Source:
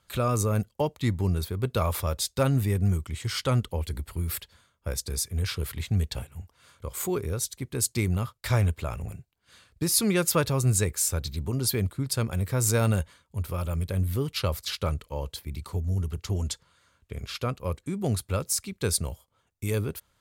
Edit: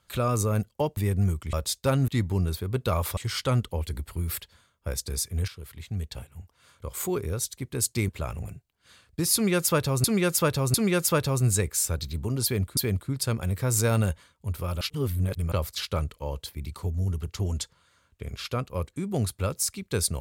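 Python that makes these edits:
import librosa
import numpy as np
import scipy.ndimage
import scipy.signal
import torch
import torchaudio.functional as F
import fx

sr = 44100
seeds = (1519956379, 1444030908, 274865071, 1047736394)

y = fx.edit(x, sr, fx.swap(start_s=0.97, length_s=1.09, other_s=2.61, other_length_s=0.56),
    fx.fade_in_from(start_s=5.48, length_s=1.47, floor_db=-13.5),
    fx.cut(start_s=8.09, length_s=0.63),
    fx.repeat(start_s=9.97, length_s=0.7, count=3),
    fx.repeat(start_s=11.67, length_s=0.33, count=2),
    fx.reverse_span(start_s=13.71, length_s=0.71), tone=tone)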